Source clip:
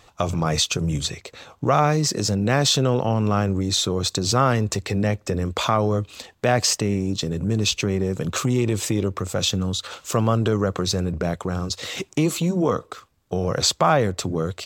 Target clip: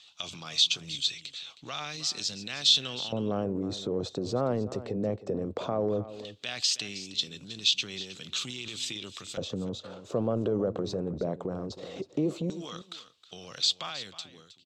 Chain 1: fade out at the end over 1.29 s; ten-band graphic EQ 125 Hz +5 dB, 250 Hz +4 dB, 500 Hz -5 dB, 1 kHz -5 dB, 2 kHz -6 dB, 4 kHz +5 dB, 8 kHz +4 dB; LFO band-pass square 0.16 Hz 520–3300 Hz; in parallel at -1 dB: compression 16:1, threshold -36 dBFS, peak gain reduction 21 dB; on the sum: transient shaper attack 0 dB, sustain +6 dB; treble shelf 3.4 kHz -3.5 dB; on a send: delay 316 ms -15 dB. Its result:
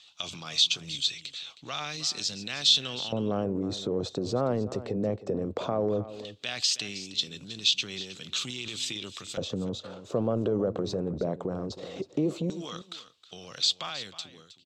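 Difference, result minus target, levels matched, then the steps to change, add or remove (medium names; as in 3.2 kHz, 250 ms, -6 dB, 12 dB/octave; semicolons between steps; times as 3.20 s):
compression: peak gain reduction -7 dB
change: compression 16:1, threshold -43.5 dBFS, peak gain reduction 28 dB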